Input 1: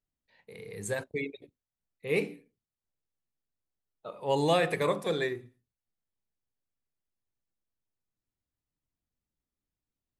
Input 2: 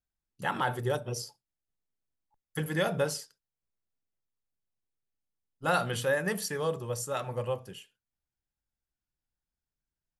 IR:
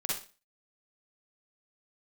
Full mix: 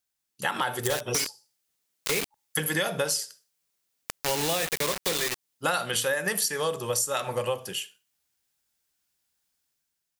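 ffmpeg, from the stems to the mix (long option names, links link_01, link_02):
-filter_complex "[0:a]acrusher=bits=4:mix=0:aa=0.000001,dynaudnorm=framelen=110:gausssize=17:maxgain=7dB,volume=-2dB[link_01];[1:a]highpass=frequency=270:poles=1,dynaudnorm=framelen=150:gausssize=7:maxgain=6dB,volume=2.5dB,asplit=2[link_02][link_03];[link_03]volume=-23.5dB[link_04];[2:a]atrim=start_sample=2205[link_05];[link_04][link_05]afir=irnorm=-1:irlink=0[link_06];[link_01][link_02][link_06]amix=inputs=3:normalize=0,highshelf=frequency=2300:gain=10.5,acompressor=threshold=-24dB:ratio=6"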